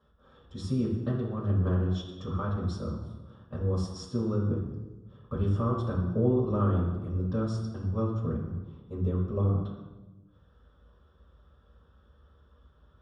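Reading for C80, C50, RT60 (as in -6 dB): 6.0 dB, 3.0 dB, 1.2 s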